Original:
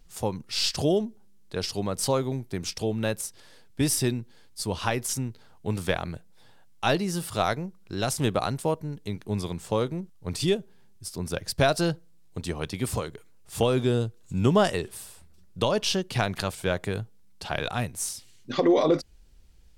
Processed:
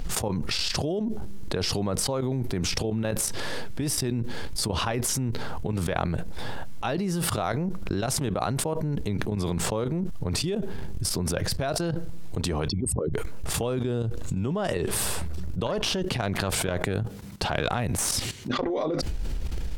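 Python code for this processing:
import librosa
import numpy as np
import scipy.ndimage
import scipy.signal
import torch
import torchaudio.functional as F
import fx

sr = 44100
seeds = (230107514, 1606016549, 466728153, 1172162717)

y = fx.level_steps(x, sr, step_db=20, at=(3.25, 3.98))
y = fx.envelope_sharpen(y, sr, power=3.0, at=(12.68, 13.14))
y = fx.tube_stage(y, sr, drive_db=16.0, bias=0.75, at=(15.66, 18.7))
y = fx.level_steps(y, sr, step_db=13)
y = fx.high_shelf(y, sr, hz=3000.0, db=-9.5)
y = fx.env_flatten(y, sr, amount_pct=100)
y = F.gain(torch.from_numpy(y), -1.5).numpy()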